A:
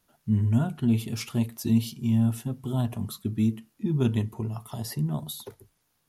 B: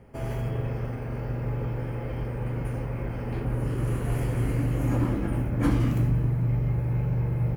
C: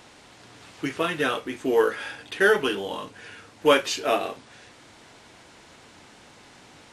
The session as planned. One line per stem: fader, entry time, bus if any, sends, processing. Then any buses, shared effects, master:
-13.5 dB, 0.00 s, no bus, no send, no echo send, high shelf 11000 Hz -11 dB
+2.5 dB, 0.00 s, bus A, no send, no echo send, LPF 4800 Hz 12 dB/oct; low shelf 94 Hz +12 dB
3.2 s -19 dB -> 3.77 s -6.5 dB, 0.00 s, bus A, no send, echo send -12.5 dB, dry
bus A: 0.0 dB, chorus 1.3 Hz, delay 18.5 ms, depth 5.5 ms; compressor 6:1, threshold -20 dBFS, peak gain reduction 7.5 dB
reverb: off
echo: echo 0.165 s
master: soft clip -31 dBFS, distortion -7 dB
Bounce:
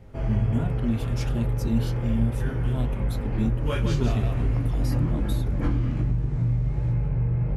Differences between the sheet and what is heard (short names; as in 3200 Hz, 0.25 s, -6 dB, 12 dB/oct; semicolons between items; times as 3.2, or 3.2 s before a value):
stem A -13.5 dB -> -3.0 dB; master: missing soft clip -31 dBFS, distortion -7 dB